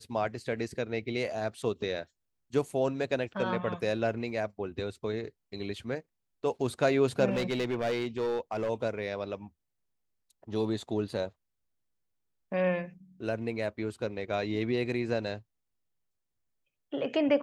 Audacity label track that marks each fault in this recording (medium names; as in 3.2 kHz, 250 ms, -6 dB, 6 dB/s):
7.300000	8.700000	clipped -26 dBFS